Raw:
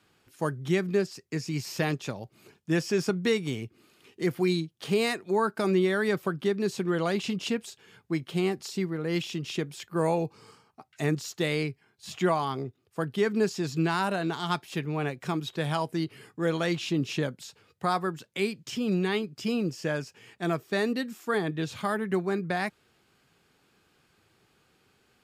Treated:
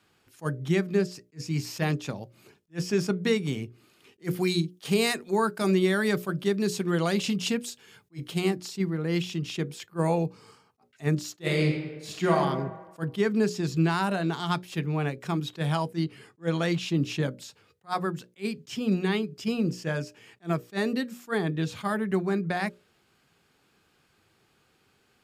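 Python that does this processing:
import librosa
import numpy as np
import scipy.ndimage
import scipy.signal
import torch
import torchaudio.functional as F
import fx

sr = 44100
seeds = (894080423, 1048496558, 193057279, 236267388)

y = fx.high_shelf(x, sr, hz=3800.0, db=8.0, at=(4.24, 8.51))
y = fx.reverb_throw(y, sr, start_s=11.39, length_s=0.97, rt60_s=1.3, drr_db=1.0)
y = fx.lowpass(y, sr, hz=10000.0, slope=12, at=(16.02, 16.62))
y = fx.hum_notches(y, sr, base_hz=60, count=10)
y = fx.dynamic_eq(y, sr, hz=170.0, q=1.4, threshold_db=-41.0, ratio=4.0, max_db=5)
y = fx.attack_slew(y, sr, db_per_s=400.0)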